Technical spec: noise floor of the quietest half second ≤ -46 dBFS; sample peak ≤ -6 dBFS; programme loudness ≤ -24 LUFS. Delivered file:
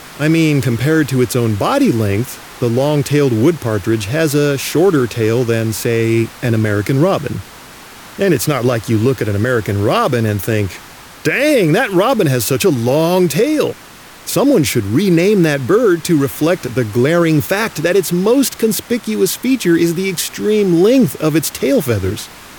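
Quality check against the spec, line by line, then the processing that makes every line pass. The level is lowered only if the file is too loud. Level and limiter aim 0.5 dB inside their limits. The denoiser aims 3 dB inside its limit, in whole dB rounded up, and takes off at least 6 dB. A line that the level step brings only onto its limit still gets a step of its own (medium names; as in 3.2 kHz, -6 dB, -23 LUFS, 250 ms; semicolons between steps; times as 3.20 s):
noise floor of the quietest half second -38 dBFS: fail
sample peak -3.0 dBFS: fail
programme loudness -14.5 LUFS: fail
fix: trim -10 dB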